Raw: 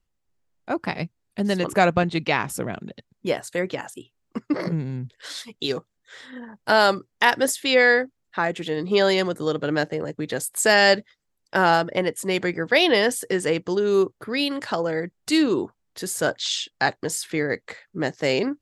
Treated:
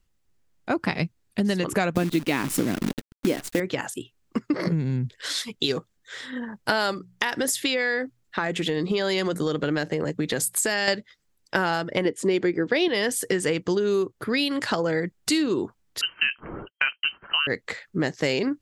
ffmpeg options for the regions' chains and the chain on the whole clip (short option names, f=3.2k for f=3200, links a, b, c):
-filter_complex "[0:a]asettb=1/sr,asplit=3[a][b][c];[a]atrim=end=1.954[d];[b]atrim=start=1.95:end=3.6,asetpts=PTS-STARTPTS,afade=t=in:d=0.004:c=qsin,afade=t=out:st=1.646:d=0.004:c=qsin,equalizer=f=280:w=1.7:g=13,acrusher=bits=6:dc=4:mix=0:aa=0.000001[e];[c]atrim=start=3.596[f];[d][e]acrossfade=d=0.004:c1=hsin:c2=qsin[g];[g][f]acrossfade=d=0.004:c1=qsin:c2=hsin,asettb=1/sr,asplit=3[h][i][j];[h]atrim=end=6.934[k];[i]atrim=start=6.93:end=10.88,asetpts=PTS-STARTPTS,afade=t=in:d=0.004:c=qsin,afade=t=out:st=3.946:d=0.004:c=qsin,bandreject=f=60:t=h:w=6,bandreject=f=120:t=h:w=6,bandreject=f=180:t=h:w=6,acompressor=threshold=-24dB:ratio=3:attack=3.2:release=140:knee=1:detection=peak[l];[j]atrim=start=10.876[m];[k][l]acrossfade=d=0.004:c1=hsin:c2=qsin[n];[n][m]acrossfade=d=0.004:c1=qsin:c2=hsin,asettb=1/sr,asplit=3[o][p][q];[o]atrim=end=12.054[r];[p]atrim=start=12.05:end=12.88,asetpts=PTS-STARTPTS,afade=t=in:d=0.004:c=qsin,afade=t=out:st=0.826:d=0.004:c=qsin,lowpass=7.2k,equalizer=f=350:w=1.4:g=10[s];[q]atrim=start=12.876[t];[r][s]acrossfade=d=0.004:c1=hsin:c2=qsin[u];[u][t]acrossfade=d=0.004:c1=qsin:c2=hsin,asettb=1/sr,asplit=3[v][w][x];[v]atrim=end=16.014[y];[w]atrim=start=16.01:end=17.47,asetpts=PTS-STARTPTS,afade=t=in:d=0.004:c=qsin,afade=t=out:st=1.456:d=0.004:c=qsin,lowpass=f=2.7k:t=q:w=0.5098,lowpass=f=2.7k:t=q:w=0.6013,lowpass=f=2.7k:t=q:w=0.9,lowpass=f=2.7k:t=q:w=2.563,afreqshift=-3200,acompressor=mode=upward:threshold=-42dB:ratio=2.5:attack=3.2:release=140:knee=2.83:detection=peak,agate=range=-33dB:threshold=-47dB:ratio=3:release=100:detection=peak[z];[x]atrim=start=17.466[aa];[y][z]acrossfade=d=0.004:c1=hsin:c2=qsin[ab];[ab][aa]acrossfade=d=0.004:c1=qsin:c2=hsin,equalizer=f=720:t=o:w=1.4:g=-4.5,acompressor=threshold=-27dB:ratio=6,volume=6.5dB"